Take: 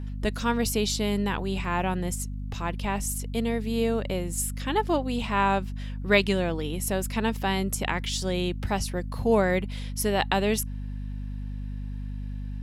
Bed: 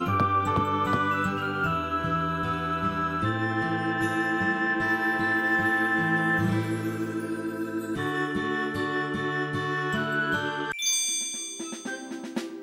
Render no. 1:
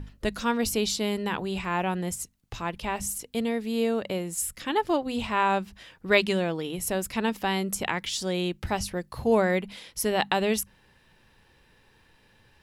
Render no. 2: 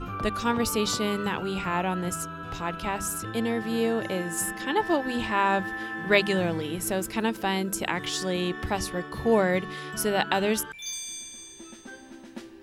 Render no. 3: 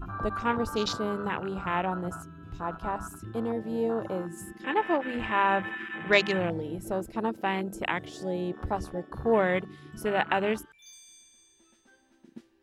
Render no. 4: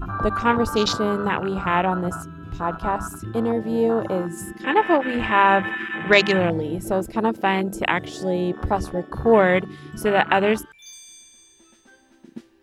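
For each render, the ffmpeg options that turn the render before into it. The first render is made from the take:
-af "bandreject=f=50:t=h:w=6,bandreject=f=100:t=h:w=6,bandreject=f=150:t=h:w=6,bandreject=f=200:t=h:w=6,bandreject=f=250:t=h:w=6"
-filter_complex "[1:a]volume=-9.5dB[a];[0:a][a]amix=inputs=2:normalize=0"
-af "equalizer=f=220:t=o:w=1.9:g=-4,afwtdn=0.0282"
-af "volume=8.5dB,alimiter=limit=-2dB:level=0:latency=1"

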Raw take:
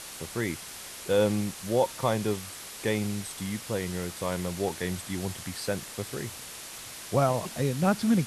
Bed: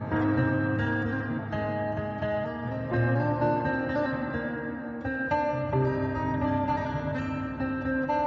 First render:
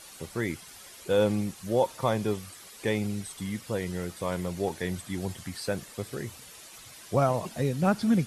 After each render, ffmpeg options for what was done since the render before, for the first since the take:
-af "afftdn=nr=10:nf=-43"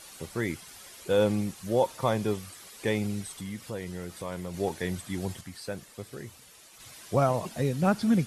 -filter_complex "[0:a]asettb=1/sr,asplit=3[a][b][c];[a]atrim=end=3.404[d];[b]atrim=start=3.4:end=4.54,asetpts=PTS-STARTPTS,afade=t=in:d=0.004:c=qsin,afade=t=out:st=1.136:d=0.004:c=qsin,acompressor=threshold=-39dB:ratio=1.5:attack=3.2:release=140:knee=1:detection=peak[e];[c]atrim=start=4.536[f];[d][e]acrossfade=d=0.004:c1=hsin:c2=qsin[g];[g][f]acrossfade=d=0.004:c1=qsin:c2=hsin,asplit=3[h][i][j];[h]atrim=end=5.412[k];[i]atrim=start=5.408:end=6.802,asetpts=PTS-STARTPTS,volume=-5.5dB[l];[j]atrim=start=6.798[m];[k][l]acrossfade=d=0.004:c1=hsin:c2=hsin[n];[n][m]acrossfade=d=0.004:c1=hsin:c2=hsin"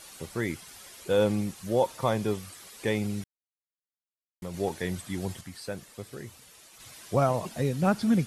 -filter_complex "[0:a]asplit=3[a][b][c];[a]atrim=end=3.24,asetpts=PTS-STARTPTS,afade=t=out:st=3.236:d=0.004:c=hsin[d];[b]atrim=start=3.24:end=4.42,asetpts=PTS-STARTPTS,volume=0[e];[c]atrim=start=4.42,asetpts=PTS-STARTPTS,afade=t=in:d=0.004:c=hsin[f];[d][e][f]concat=n=3:v=0:a=1"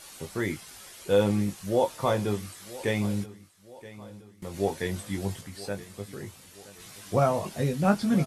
-filter_complex "[0:a]asplit=2[a][b];[b]adelay=20,volume=-5.5dB[c];[a][c]amix=inputs=2:normalize=0,aecho=1:1:974|1948|2922|3896:0.126|0.0579|0.0266|0.0123"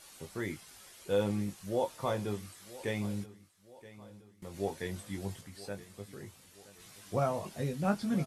-af "volume=-7.5dB"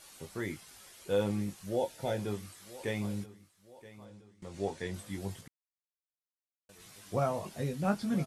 -filter_complex "[0:a]asettb=1/sr,asplit=3[a][b][c];[a]atrim=end=1.764[d];[b]atrim=start=1.76:end=2.19,asetpts=PTS-STARTPTS,afade=t=in:d=0.004:c=qsin,afade=t=out:st=0.426:d=0.004:c=qsin,asuperstop=centerf=1100:order=4:qfactor=2.3[e];[c]atrim=start=2.186[f];[d][e]acrossfade=d=0.004:c1=hsin:c2=qsin[g];[g][f]acrossfade=d=0.004:c1=qsin:c2=hsin,asettb=1/sr,asplit=3[h][i][j];[h]atrim=end=4.054[k];[i]atrim=start=4.05:end=4.94,asetpts=PTS-STARTPTS,afade=t=in:d=0.004:c=qsin,afade=t=out:st=0.886:d=0.004:c=qsin,lowpass=f=9k:w=0.5412,lowpass=f=9k:w=1.3066[l];[j]atrim=start=4.936[m];[k][l]acrossfade=d=0.004:c1=hsin:c2=qsin[n];[n][m]acrossfade=d=0.004:c1=qsin:c2=hsin,asplit=3[o][p][q];[o]atrim=end=5.48,asetpts=PTS-STARTPTS,afade=t=out:st=5.476:d=0.004:c=hsin[r];[p]atrim=start=5.48:end=6.69,asetpts=PTS-STARTPTS,volume=0[s];[q]atrim=start=6.69,asetpts=PTS-STARTPTS,afade=t=in:d=0.004:c=hsin[t];[r][s][t]concat=n=3:v=0:a=1"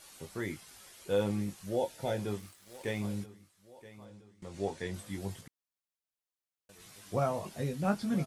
-filter_complex "[0:a]asettb=1/sr,asplit=3[a][b][c];[a]atrim=end=2.384[d];[b]atrim=start=2.38:end=3.04,asetpts=PTS-STARTPTS,afade=t=in:d=0.004:c=qsin,afade=t=out:st=0.656:d=0.004:c=qsin,aeval=exprs='sgn(val(0))*max(abs(val(0))-0.00158,0)':c=same[e];[c]atrim=start=3.036[f];[d][e]acrossfade=d=0.004:c1=hsin:c2=qsin[g];[g][f]acrossfade=d=0.004:c1=qsin:c2=hsin"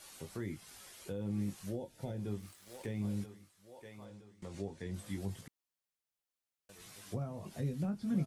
-filter_complex "[0:a]alimiter=limit=-23dB:level=0:latency=1:release=299,acrossover=split=320[a][b];[b]acompressor=threshold=-47dB:ratio=10[c];[a][c]amix=inputs=2:normalize=0"

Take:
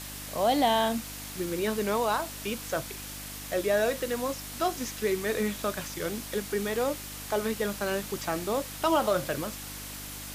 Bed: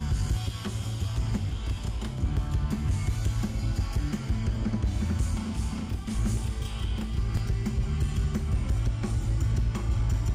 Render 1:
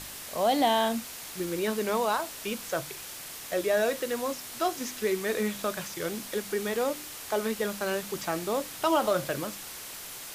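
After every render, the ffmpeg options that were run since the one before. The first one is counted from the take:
-af "bandreject=f=50:t=h:w=4,bandreject=f=100:t=h:w=4,bandreject=f=150:t=h:w=4,bandreject=f=200:t=h:w=4,bandreject=f=250:t=h:w=4,bandreject=f=300:t=h:w=4"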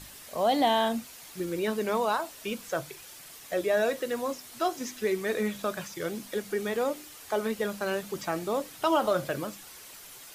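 -af "afftdn=nr=8:nf=-42"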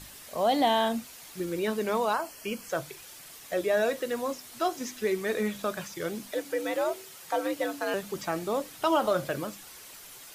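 -filter_complex "[0:a]asettb=1/sr,asplit=3[a][b][c];[a]atrim=end=2.134[d];[b]atrim=start=2.13:end=2.7,asetpts=PTS-STARTPTS,afade=t=in:d=0.004:c=qsin,afade=t=out:st=0.566:d=0.004:c=qsin,asuperstop=centerf=3700:order=8:qfactor=5[e];[c]atrim=start=2.696[f];[d][e]acrossfade=d=0.004:c1=hsin:c2=qsin[g];[g][f]acrossfade=d=0.004:c1=qsin:c2=hsin,asettb=1/sr,asplit=3[h][i][j];[h]atrim=end=6.324[k];[i]atrim=start=6.32:end=7.94,asetpts=PTS-STARTPTS,afade=t=in:d=0.004:c=qsin,afade=t=out:st=1.616:d=0.004:c=qsin,afreqshift=82[l];[j]atrim=start=7.936[m];[k][l]acrossfade=d=0.004:c1=hsin:c2=qsin[n];[n][m]acrossfade=d=0.004:c1=qsin:c2=hsin"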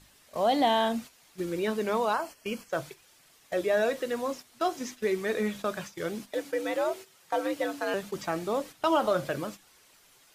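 -af "agate=range=-10dB:threshold=-40dB:ratio=16:detection=peak,highshelf=f=10k:g=-8.5"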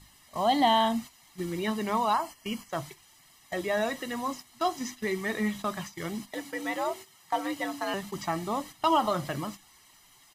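-af "aecho=1:1:1:0.68"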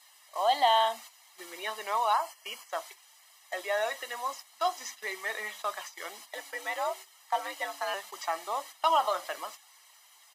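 -af "highpass=f=550:w=0.5412,highpass=f=550:w=1.3066"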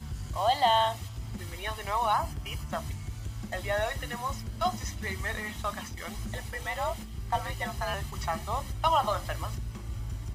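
-filter_complex "[1:a]volume=-10dB[a];[0:a][a]amix=inputs=2:normalize=0"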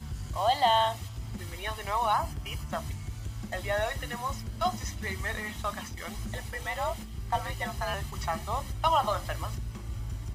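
-af anull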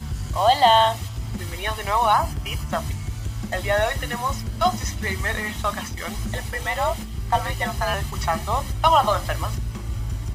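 -af "volume=8.5dB"

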